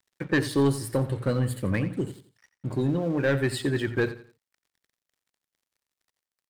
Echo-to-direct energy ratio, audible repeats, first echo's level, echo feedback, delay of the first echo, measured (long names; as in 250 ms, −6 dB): −13.5 dB, 3, −14.0 dB, 30%, 87 ms